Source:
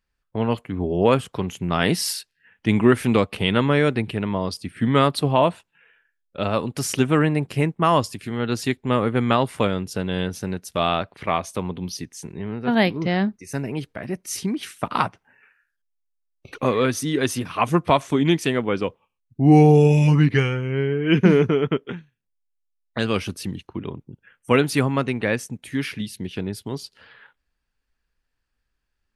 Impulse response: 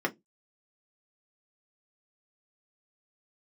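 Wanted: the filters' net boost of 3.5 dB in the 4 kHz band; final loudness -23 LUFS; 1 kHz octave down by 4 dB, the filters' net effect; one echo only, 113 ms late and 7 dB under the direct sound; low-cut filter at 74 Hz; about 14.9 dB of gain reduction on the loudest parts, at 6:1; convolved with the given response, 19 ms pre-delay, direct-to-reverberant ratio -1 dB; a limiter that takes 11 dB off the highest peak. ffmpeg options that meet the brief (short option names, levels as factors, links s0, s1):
-filter_complex "[0:a]highpass=74,equalizer=f=1000:t=o:g=-5.5,equalizer=f=4000:t=o:g=5,acompressor=threshold=0.0501:ratio=6,alimiter=limit=0.0841:level=0:latency=1,aecho=1:1:113:0.447,asplit=2[s0][s1];[1:a]atrim=start_sample=2205,adelay=19[s2];[s1][s2]afir=irnorm=-1:irlink=0,volume=0.398[s3];[s0][s3]amix=inputs=2:normalize=0,volume=1.78"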